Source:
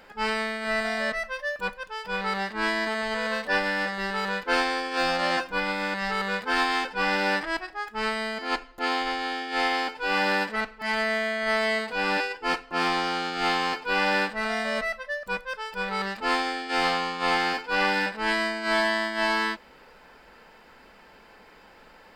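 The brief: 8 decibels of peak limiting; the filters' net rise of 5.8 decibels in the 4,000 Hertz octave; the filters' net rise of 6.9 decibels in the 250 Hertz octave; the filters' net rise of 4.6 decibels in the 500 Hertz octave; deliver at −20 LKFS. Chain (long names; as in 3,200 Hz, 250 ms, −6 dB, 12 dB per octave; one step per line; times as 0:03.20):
parametric band 250 Hz +7.5 dB
parametric band 500 Hz +4 dB
parametric band 4,000 Hz +7.5 dB
level +5.5 dB
brickwall limiter −8.5 dBFS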